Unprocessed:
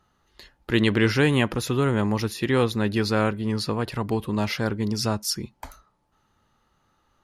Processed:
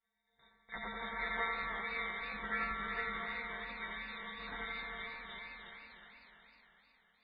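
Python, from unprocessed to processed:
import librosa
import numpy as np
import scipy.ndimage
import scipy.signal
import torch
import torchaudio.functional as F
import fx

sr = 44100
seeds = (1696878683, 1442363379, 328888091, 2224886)

p1 = fx.brickwall_bandstop(x, sr, low_hz=180.0, high_hz=1400.0)
p2 = fx.rider(p1, sr, range_db=3, speed_s=0.5)
p3 = fx.stiff_resonator(p2, sr, f0_hz=130.0, decay_s=0.67, stiffness=0.002)
p4 = p3 + fx.echo_feedback(p3, sr, ms=367, feedback_pct=51, wet_db=-11, dry=0)
p5 = fx.spec_gate(p4, sr, threshold_db=-10, keep='weak')
p6 = fx.air_absorb(p5, sr, metres=90.0)
p7 = fx.echo_thinned(p6, sr, ms=86, feedback_pct=63, hz=420.0, wet_db=-4)
p8 = fx.freq_invert(p7, sr, carrier_hz=3700)
p9 = fx.echo_warbled(p8, sr, ms=307, feedback_pct=60, rate_hz=2.8, cents=192, wet_db=-10.0)
y = F.gain(torch.from_numpy(p9), 9.0).numpy()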